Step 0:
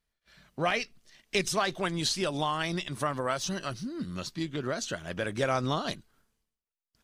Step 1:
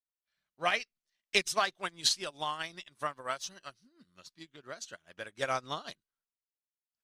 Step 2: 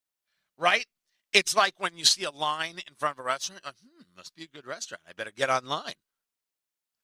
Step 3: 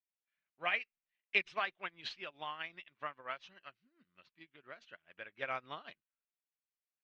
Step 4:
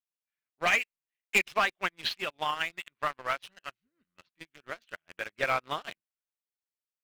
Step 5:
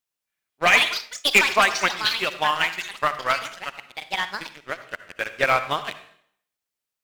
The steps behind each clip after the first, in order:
bass shelf 490 Hz -11.5 dB; upward expansion 2.5:1, over -46 dBFS; trim +4.5 dB
bass shelf 130 Hz -6.5 dB; trim +7 dB
four-pole ladder low-pass 2.9 kHz, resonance 50%; trim -6 dB
waveshaping leveller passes 3; AM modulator 180 Hz, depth 25%; trim +2.5 dB
on a send at -11.5 dB: reverberation RT60 0.65 s, pre-delay 53 ms; on the sum: ever faster or slower copies 298 ms, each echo +6 st, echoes 3, each echo -6 dB; trim +8.5 dB

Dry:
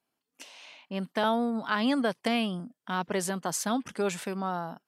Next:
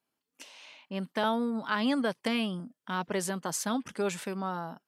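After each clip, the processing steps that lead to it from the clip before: band-stop 710 Hz, Q 12; trim -1.5 dB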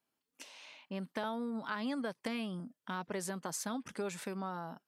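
dynamic bell 3 kHz, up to -5 dB, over -56 dBFS, Q 6.2; compression 2.5:1, threshold -35 dBFS, peak gain reduction 8.5 dB; trim -2 dB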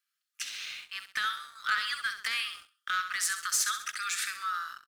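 rippled Chebyshev high-pass 1.2 kHz, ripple 3 dB; feedback delay 66 ms, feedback 47%, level -10 dB; waveshaping leveller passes 2; trim +8.5 dB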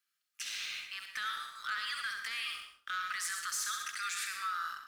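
peak limiter -29.5 dBFS, peak gain reduction 10 dB; reverberation RT60 0.40 s, pre-delay 97 ms, DRR 7 dB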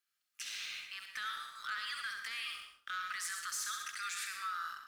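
recorder AGC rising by 10 dB/s; trim -3 dB

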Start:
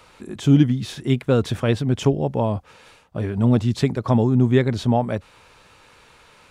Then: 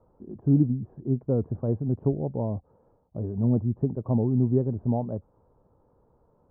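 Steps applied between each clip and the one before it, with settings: Bessel low-pass 550 Hz, order 6; trim -5.5 dB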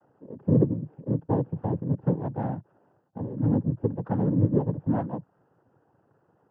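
noise-vocoded speech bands 8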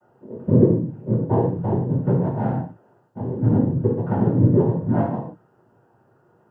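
gated-style reverb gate 190 ms falling, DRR -6.5 dB

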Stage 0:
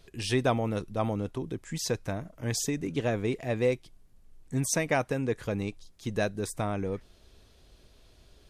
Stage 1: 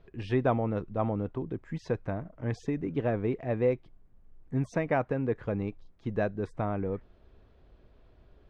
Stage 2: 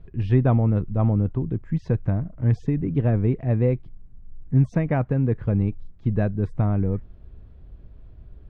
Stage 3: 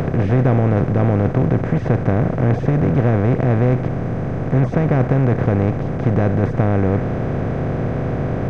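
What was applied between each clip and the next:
low-pass 1.6 kHz 12 dB/octave
tone controls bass +15 dB, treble -5 dB
spectral levelling over time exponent 0.2; trim -1 dB

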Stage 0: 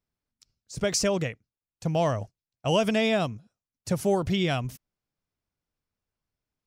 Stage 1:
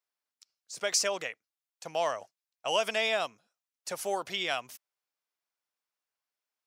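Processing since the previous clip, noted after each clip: high-pass 730 Hz 12 dB/octave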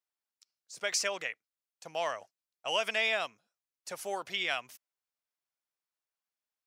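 dynamic bell 2.1 kHz, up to +7 dB, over -44 dBFS, Q 1; trim -5 dB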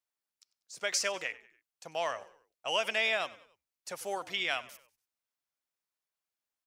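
frequency-shifting echo 96 ms, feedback 43%, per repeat -49 Hz, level -19 dB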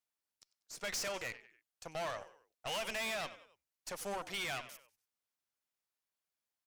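valve stage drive 38 dB, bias 0.7; trim +2.5 dB

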